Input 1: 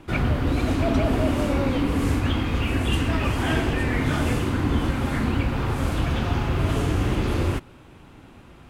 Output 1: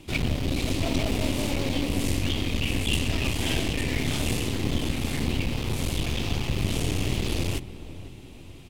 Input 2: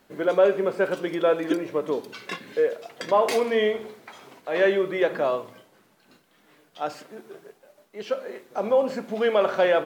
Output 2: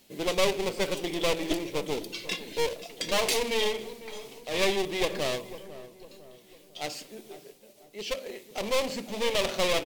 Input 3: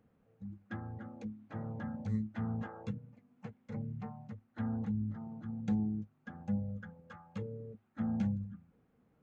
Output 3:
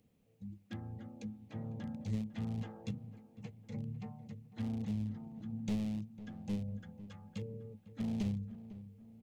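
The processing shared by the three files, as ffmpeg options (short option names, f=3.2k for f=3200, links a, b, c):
-filter_complex "[0:a]tiltshelf=f=1.1k:g=7.5,aeval=exprs='clip(val(0),-1,0.0531)':c=same,asplit=2[a][b];[b]adelay=501,lowpass=f=1.2k:p=1,volume=-14dB,asplit=2[c][d];[d]adelay=501,lowpass=f=1.2k:p=1,volume=0.5,asplit=2[e][f];[f]adelay=501,lowpass=f=1.2k:p=1,volume=0.5,asplit=2[g][h];[h]adelay=501,lowpass=f=1.2k:p=1,volume=0.5,asplit=2[i][j];[j]adelay=501,lowpass=f=1.2k:p=1,volume=0.5[k];[c][e][g][i][k]amix=inputs=5:normalize=0[l];[a][l]amix=inputs=2:normalize=0,aexciter=amount=11.8:drive=3:freq=2.2k,volume=-8.5dB"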